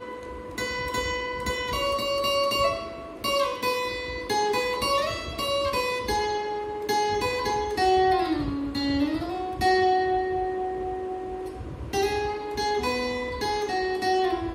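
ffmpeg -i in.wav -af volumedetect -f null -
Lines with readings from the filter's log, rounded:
mean_volume: -26.5 dB
max_volume: -11.9 dB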